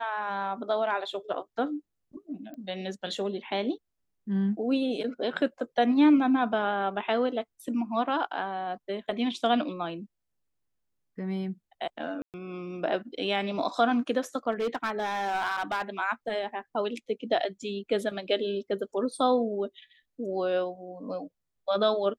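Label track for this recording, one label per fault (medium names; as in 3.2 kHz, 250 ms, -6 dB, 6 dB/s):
2.540000	2.540000	pop -31 dBFS
12.220000	12.340000	dropout 118 ms
14.510000	15.820000	clipped -24.5 dBFS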